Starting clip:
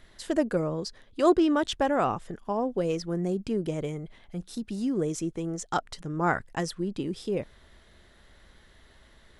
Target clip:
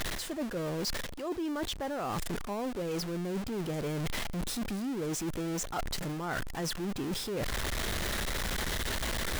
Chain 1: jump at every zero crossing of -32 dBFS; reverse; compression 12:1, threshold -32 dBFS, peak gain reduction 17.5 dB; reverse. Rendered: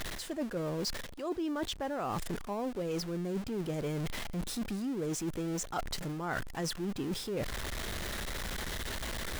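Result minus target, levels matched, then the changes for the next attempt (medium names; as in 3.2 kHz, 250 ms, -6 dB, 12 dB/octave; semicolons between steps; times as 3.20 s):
jump at every zero crossing: distortion -5 dB
change: jump at every zero crossing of -25 dBFS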